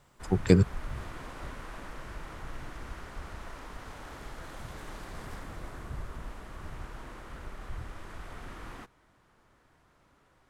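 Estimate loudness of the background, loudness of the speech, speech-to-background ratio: −44.5 LKFS, −26.0 LKFS, 18.5 dB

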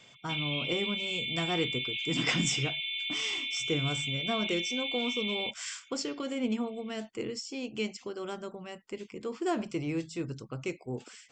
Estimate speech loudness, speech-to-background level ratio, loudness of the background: −35.0 LKFS, −2.5 dB, −32.5 LKFS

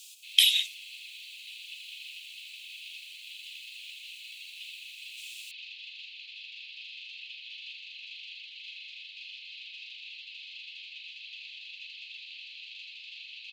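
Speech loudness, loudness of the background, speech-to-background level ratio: −23.0 LKFS, −42.5 LKFS, 19.5 dB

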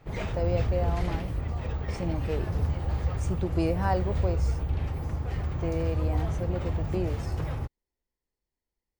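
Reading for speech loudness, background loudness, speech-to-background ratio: −33.5 LKFS, −31.0 LKFS, −2.5 dB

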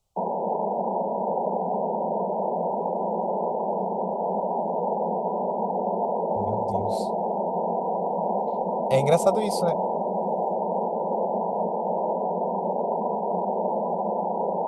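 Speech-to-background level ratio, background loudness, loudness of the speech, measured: 1.5 dB, −26.5 LKFS, −25.0 LKFS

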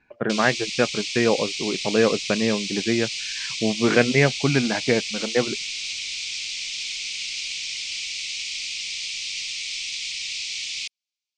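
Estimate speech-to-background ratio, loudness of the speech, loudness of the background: 4.5 dB, −23.0 LKFS, −27.5 LKFS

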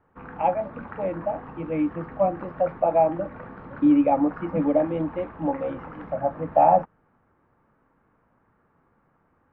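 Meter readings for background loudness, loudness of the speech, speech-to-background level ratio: −41.0 LKFS, −24.5 LKFS, 16.5 dB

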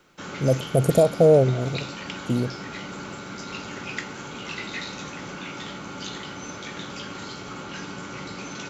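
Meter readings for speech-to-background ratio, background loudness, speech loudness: 13.5 dB, −34.5 LKFS, −21.0 LKFS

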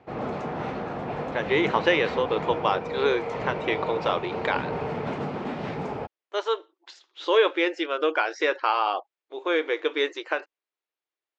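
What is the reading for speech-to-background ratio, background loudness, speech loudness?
5.5 dB, −31.5 LKFS, −26.0 LKFS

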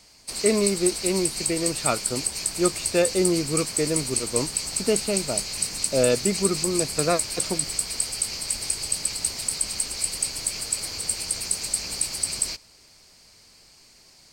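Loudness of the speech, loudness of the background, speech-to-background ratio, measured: −26.5 LKFS, −25.5 LKFS, −1.0 dB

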